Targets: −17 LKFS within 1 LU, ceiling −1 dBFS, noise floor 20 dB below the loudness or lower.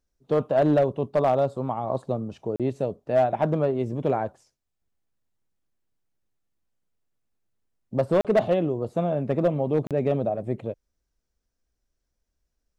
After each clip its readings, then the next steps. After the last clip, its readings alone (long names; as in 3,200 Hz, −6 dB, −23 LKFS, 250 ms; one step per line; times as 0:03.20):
share of clipped samples 0.4%; peaks flattened at −13.5 dBFS; number of dropouts 3; longest dropout 37 ms; integrated loudness −25.0 LKFS; sample peak −13.5 dBFS; target loudness −17.0 LKFS
→ clipped peaks rebuilt −13.5 dBFS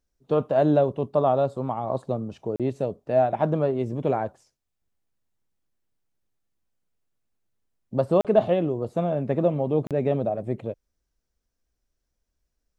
share of clipped samples 0.0%; number of dropouts 3; longest dropout 37 ms
→ repair the gap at 0:02.56/0:08.21/0:09.87, 37 ms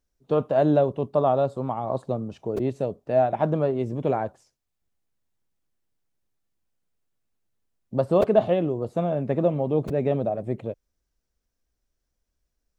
number of dropouts 0; integrated loudness −24.5 LKFS; sample peak −7.0 dBFS; target loudness −17.0 LKFS
→ level +7.5 dB
brickwall limiter −1 dBFS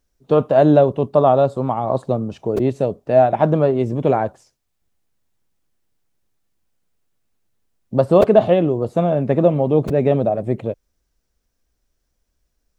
integrated loudness −17.0 LKFS; sample peak −1.0 dBFS; background noise floor −72 dBFS